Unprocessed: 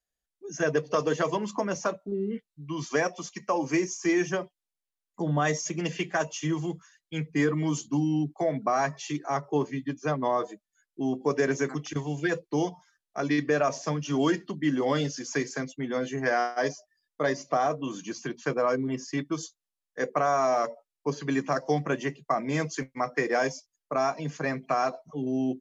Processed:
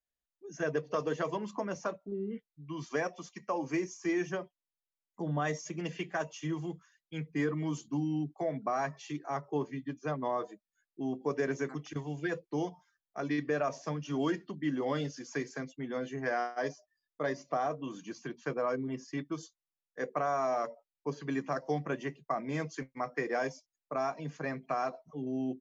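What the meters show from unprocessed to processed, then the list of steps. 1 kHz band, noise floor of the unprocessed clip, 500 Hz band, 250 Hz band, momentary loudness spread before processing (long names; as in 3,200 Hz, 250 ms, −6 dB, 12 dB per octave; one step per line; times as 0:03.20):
−6.5 dB, below −85 dBFS, −6.5 dB, −6.5 dB, 8 LU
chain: high-shelf EQ 5,600 Hz −9.5 dB
level −6.5 dB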